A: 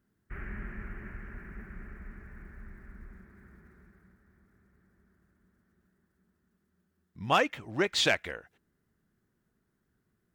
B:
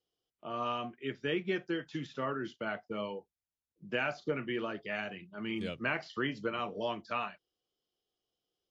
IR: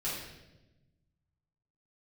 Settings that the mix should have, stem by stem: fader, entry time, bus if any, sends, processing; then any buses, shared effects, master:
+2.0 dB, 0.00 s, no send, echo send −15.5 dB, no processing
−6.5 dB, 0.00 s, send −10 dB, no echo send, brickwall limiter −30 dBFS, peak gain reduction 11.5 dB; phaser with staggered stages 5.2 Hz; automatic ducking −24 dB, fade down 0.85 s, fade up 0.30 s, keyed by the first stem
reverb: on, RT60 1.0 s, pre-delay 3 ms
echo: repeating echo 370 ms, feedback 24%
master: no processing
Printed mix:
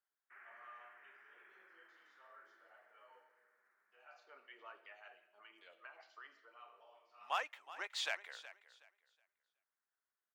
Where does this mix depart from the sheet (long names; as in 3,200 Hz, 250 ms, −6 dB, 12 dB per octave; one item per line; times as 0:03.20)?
stem A +2.0 dB → −7.0 dB
master: extra four-pole ladder high-pass 640 Hz, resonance 25%